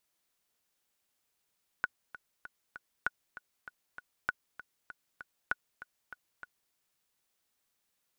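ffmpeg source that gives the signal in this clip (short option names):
-f lavfi -i "aevalsrc='pow(10,(-16-15.5*gte(mod(t,4*60/196),60/196))/20)*sin(2*PI*1470*mod(t,60/196))*exp(-6.91*mod(t,60/196)/0.03)':d=4.89:s=44100"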